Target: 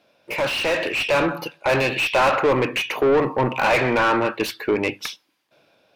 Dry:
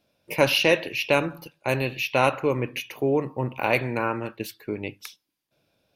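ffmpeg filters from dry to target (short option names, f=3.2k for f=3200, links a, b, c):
-filter_complex "[0:a]asplit=2[a][b];[b]highpass=f=720:p=1,volume=30dB,asoftclip=type=tanh:threshold=-5dB[c];[a][c]amix=inputs=2:normalize=0,lowpass=f=1.9k:p=1,volume=-6dB,dynaudnorm=f=250:g=7:m=11.5dB,volume=-9dB"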